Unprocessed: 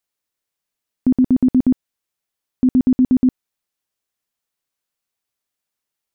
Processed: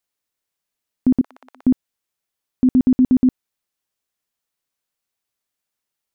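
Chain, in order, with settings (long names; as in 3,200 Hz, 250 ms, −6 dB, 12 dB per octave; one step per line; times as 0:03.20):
0:01.21–0:01.63: high-pass filter 830 Hz 24 dB per octave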